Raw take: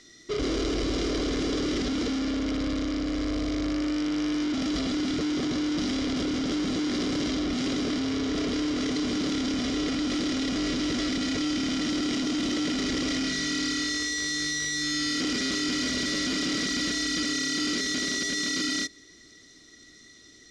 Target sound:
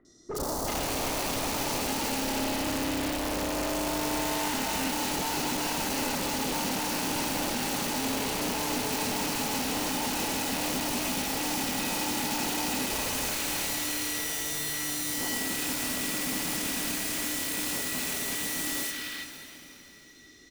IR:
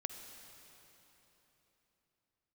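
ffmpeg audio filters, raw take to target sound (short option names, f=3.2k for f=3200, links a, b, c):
-filter_complex "[0:a]asettb=1/sr,asplit=3[a][b][c];[a]atrim=end=12.904[d];[b]atrim=start=12.9:end=13.89,asetpts=PTS-STARTPTS,afade=t=in:d=0.004:c=qsin,afade=t=out:st=0.986:d=0.004:c=qsin,lowshelf=f=150:g=10[e];[c]atrim=start=13.886[f];[d][e]acrossfade=d=0.004:c1=hsin:c2=qsin[g];[g][f]acrossfade=d=0.004:c1=qsin:c2=hsin,aeval=exprs='(mod(16.8*val(0)+1,2)-1)/16.8':c=same,acrossover=split=1300|4600[h][i][j];[j]adelay=50[k];[i]adelay=370[l];[h][l][k]amix=inputs=3:normalize=0[m];[1:a]atrim=start_sample=2205[n];[m][n]afir=irnorm=-1:irlink=0"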